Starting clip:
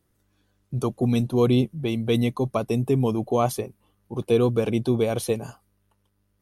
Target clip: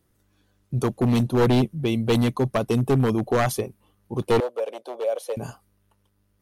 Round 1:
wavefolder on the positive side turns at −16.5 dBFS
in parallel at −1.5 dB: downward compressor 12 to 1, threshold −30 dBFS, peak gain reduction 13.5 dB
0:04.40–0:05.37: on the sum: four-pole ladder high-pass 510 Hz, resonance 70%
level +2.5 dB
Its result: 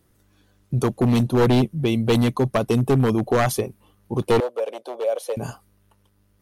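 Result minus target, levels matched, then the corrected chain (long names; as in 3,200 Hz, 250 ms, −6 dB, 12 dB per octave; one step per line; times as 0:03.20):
downward compressor: peak gain reduction +13.5 dB
wavefolder on the positive side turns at −16.5 dBFS
0:04.40–0:05.37: four-pole ladder high-pass 510 Hz, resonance 70%
level +2.5 dB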